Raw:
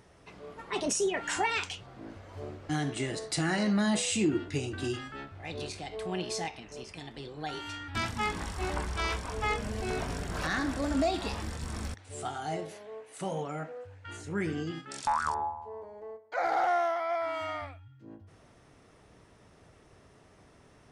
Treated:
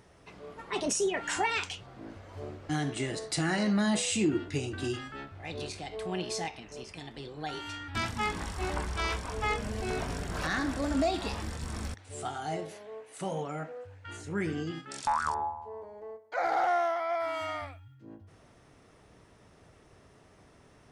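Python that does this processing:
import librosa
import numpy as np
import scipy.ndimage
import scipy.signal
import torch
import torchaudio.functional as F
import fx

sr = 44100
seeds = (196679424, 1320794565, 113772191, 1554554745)

y = fx.high_shelf(x, sr, hz=6100.0, db=8.0, at=(17.2, 17.95))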